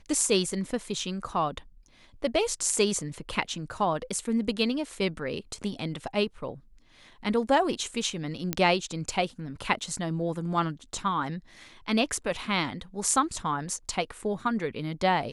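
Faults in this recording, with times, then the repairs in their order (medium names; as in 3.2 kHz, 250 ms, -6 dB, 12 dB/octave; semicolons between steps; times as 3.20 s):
8.53 s: pop -10 dBFS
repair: de-click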